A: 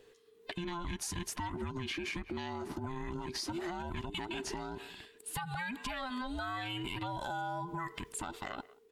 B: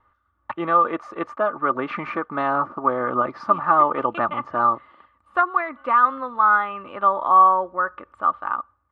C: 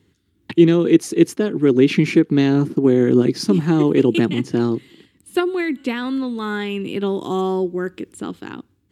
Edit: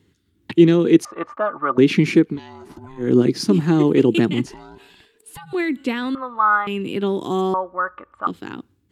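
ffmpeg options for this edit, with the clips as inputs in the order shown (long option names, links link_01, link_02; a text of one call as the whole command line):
ffmpeg -i take0.wav -i take1.wav -i take2.wav -filter_complex "[1:a]asplit=3[link_01][link_02][link_03];[0:a]asplit=2[link_04][link_05];[2:a]asplit=6[link_06][link_07][link_08][link_09][link_10][link_11];[link_06]atrim=end=1.052[link_12];[link_01]atrim=start=1.048:end=1.782[link_13];[link_07]atrim=start=1.778:end=2.4[link_14];[link_04]atrim=start=2.24:end=3.13[link_15];[link_08]atrim=start=2.97:end=4.462[link_16];[link_05]atrim=start=4.458:end=5.532[link_17];[link_09]atrim=start=5.528:end=6.152[link_18];[link_02]atrim=start=6.148:end=6.672[link_19];[link_10]atrim=start=6.668:end=7.542[link_20];[link_03]atrim=start=7.538:end=8.272[link_21];[link_11]atrim=start=8.268[link_22];[link_12][link_13]acrossfade=duration=0.004:curve1=hsin:curve2=hsin[link_23];[link_23][link_14]acrossfade=duration=0.004:curve1=hsin:curve2=hsin[link_24];[link_24][link_15]acrossfade=duration=0.16:curve1=tri:curve2=tri[link_25];[link_25][link_16]acrossfade=duration=0.16:curve1=tri:curve2=tri[link_26];[link_26][link_17]acrossfade=duration=0.004:curve1=hsin:curve2=hsin[link_27];[link_27][link_18]acrossfade=duration=0.004:curve1=hsin:curve2=hsin[link_28];[link_28][link_19]acrossfade=duration=0.004:curve1=hsin:curve2=hsin[link_29];[link_29][link_20]acrossfade=duration=0.004:curve1=hsin:curve2=hsin[link_30];[link_30][link_21]acrossfade=duration=0.004:curve1=hsin:curve2=hsin[link_31];[link_31][link_22]acrossfade=duration=0.004:curve1=hsin:curve2=hsin" out.wav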